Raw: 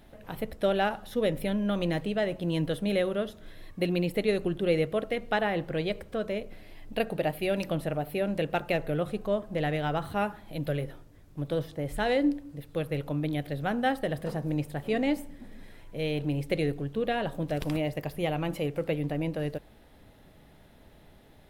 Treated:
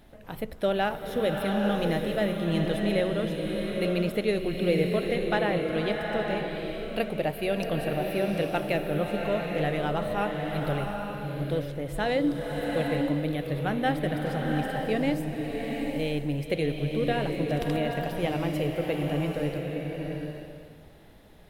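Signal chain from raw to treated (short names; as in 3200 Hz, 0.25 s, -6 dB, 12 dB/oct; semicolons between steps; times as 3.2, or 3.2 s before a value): bloom reverb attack 0.84 s, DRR 1.5 dB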